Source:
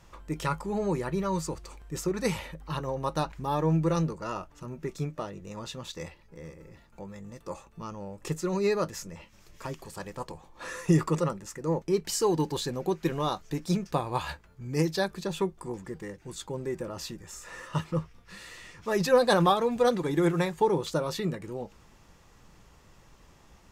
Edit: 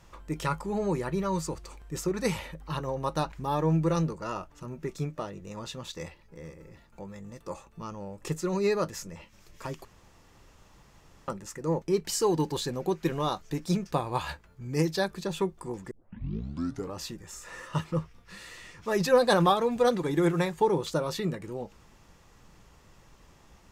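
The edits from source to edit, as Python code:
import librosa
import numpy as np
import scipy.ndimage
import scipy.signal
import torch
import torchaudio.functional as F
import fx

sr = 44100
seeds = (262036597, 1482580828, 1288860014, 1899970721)

y = fx.edit(x, sr, fx.room_tone_fill(start_s=9.85, length_s=1.43),
    fx.tape_start(start_s=15.91, length_s=1.09), tone=tone)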